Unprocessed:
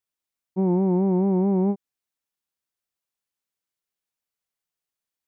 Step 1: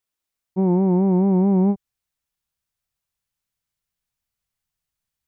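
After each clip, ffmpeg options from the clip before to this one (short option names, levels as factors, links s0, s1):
-af "asubboost=boost=7.5:cutoff=130,volume=1.5"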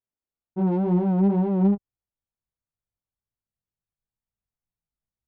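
-af "flanger=delay=17.5:depth=3.2:speed=2.1,adynamicsmooth=sensitivity=3:basefreq=980"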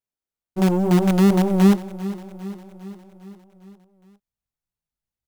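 -filter_complex "[0:a]asplit=2[s0][s1];[s1]acrusher=bits=4:dc=4:mix=0:aa=0.000001,volume=0.708[s2];[s0][s2]amix=inputs=2:normalize=0,aecho=1:1:404|808|1212|1616|2020|2424:0.158|0.0935|0.0552|0.0326|0.0192|0.0113"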